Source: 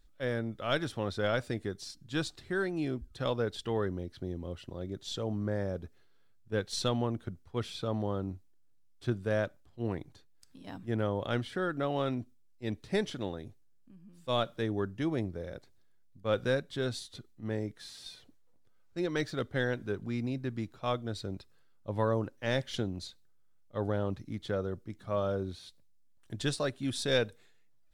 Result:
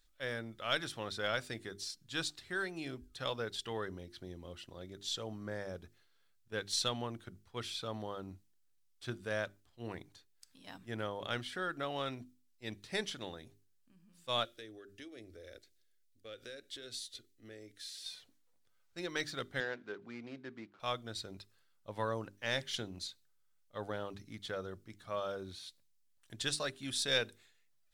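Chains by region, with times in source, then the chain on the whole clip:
14.45–18.05 s: static phaser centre 390 Hz, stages 4 + compression 4:1, threshold -40 dBFS
19.60–20.80 s: median filter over 15 samples + band-pass 230–3500 Hz
whole clip: tilt shelf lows -6.5 dB; hum notches 50/100/150/200/250/300/350/400 Hz; trim -4 dB

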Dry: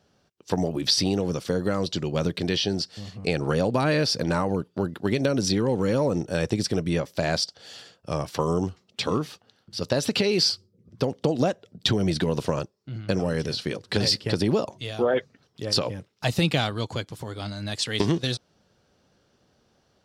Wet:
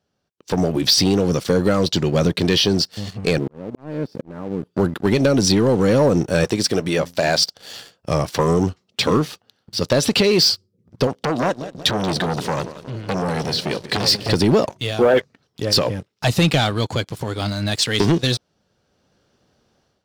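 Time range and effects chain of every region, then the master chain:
3.38–4.63 s: zero-crossing glitches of -23 dBFS + band-pass filter 260 Hz, Q 1 + slow attack 730 ms
6.44–7.43 s: bass shelf 220 Hz -10.5 dB + de-hum 86.09 Hz, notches 3
11.07–14.29 s: high-pass 98 Hz 6 dB/octave + feedback delay 184 ms, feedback 54%, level -16.5 dB + transformer saturation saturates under 2 kHz
whole clip: waveshaping leveller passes 2; level rider; trim -5.5 dB

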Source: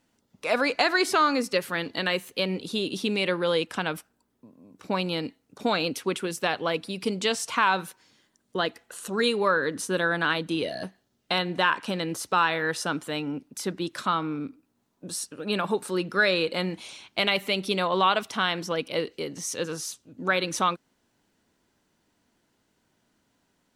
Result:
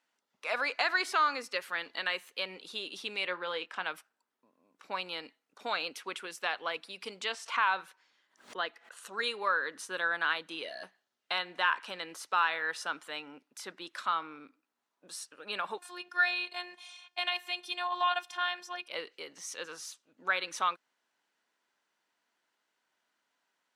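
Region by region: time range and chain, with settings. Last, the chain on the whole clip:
3.26–3.83 s: peaking EQ 13 kHz -14 dB 1.5 oct + doubling 22 ms -11.5 dB
7.24–8.97 s: treble shelf 5.9 kHz -8.5 dB + swell ahead of each attack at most 150 dB/s
15.78–18.88 s: comb 1.2 ms, depth 67% + robot voice 356 Hz
whole clip: high-pass 1.3 kHz 12 dB/octave; tilt EQ -3.5 dB/octave

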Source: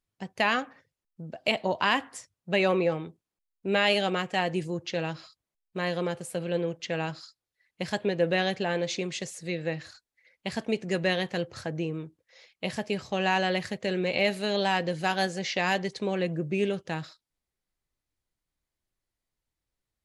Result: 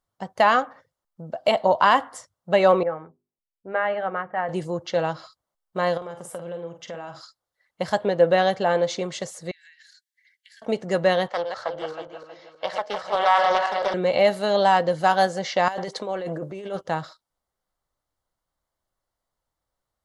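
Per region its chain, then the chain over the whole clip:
2.83–4.49 s: level-controlled noise filter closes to 370 Hz, open at -21 dBFS + four-pole ladder low-pass 2.1 kHz, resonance 45% + hum notches 50/100/150/200/250/300/350/400/450 Hz
5.97–7.21 s: band-stop 4.3 kHz, Q 6.1 + compression 8:1, threshold -37 dBFS + doubling 47 ms -8 dB
9.51–10.62 s: steep high-pass 1.6 kHz 96 dB/octave + compression 8:1, threshold -50 dBFS
11.28–13.94 s: backward echo that repeats 159 ms, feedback 60%, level -5 dB + three-band isolator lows -20 dB, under 450 Hz, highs -18 dB, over 6 kHz + loudspeaker Doppler distortion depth 0.32 ms
15.68–16.81 s: high-pass 240 Hz + compressor with a negative ratio -35 dBFS
whole clip: high-order bell 840 Hz +9 dB; band-stop 2.5 kHz, Q 5.4; trim +1.5 dB

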